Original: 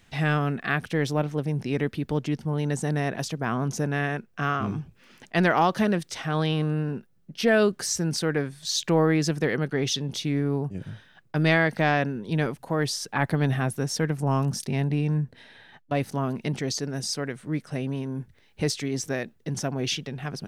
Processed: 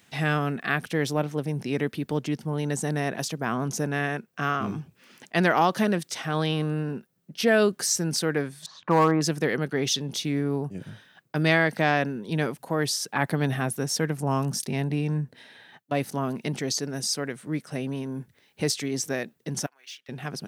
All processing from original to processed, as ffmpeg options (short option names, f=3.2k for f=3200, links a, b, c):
-filter_complex "[0:a]asettb=1/sr,asplit=3[a][b][c];[a]atrim=end=8.664[d];[b]atrim=start=8.66:end=9.21,asetpts=PTS-STARTPTS,afade=t=in:d=0.004:c=qsin,afade=t=out:st=0.546:d=0.004:c=qsin,lowpass=f=1.1k:t=q:w=3.8,equalizer=f=400:w=6:g=-7,aeval=exprs='clip(val(0),-1,0.2)':c=same[e];[c]atrim=start=9.206[f];[d][e]acrossfade=d=0.004:c1=hsin:c2=qsin[g];[g][f]acrossfade=d=0.004:c1=qsin:c2=hsin,asettb=1/sr,asplit=3[h][i][j];[h]atrim=end=19.664[k];[i]atrim=start=19.66:end=20.09,asetpts=PTS-STARTPTS,afade=t=in:d=0.004:c=qsin,afade=t=out:st=0.426:d=0.004:c=qsin,bandpass=f=1.6k:t=q:w=1.4,aderivative,acrusher=bits=6:mode=log:mix=0:aa=0.000001[l];[j]atrim=start=20.086[m];[k][l]acrossfade=d=0.004:c1=hsin:c2=qsin[n];[n][m]acrossfade=d=0.004:c1=qsin:c2=hsin,highpass=140,highshelf=f=7.8k:g=8"